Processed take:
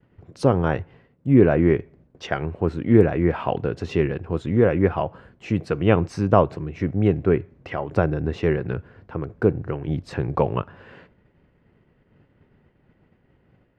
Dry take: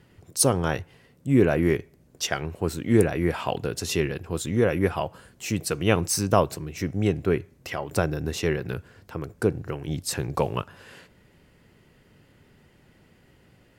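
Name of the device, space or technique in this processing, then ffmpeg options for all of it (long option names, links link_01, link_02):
hearing-loss simulation: -af "lowpass=2800,highshelf=frequency=2200:gain=-9,agate=range=-33dB:threshold=-51dB:ratio=3:detection=peak,volume=4.5dB"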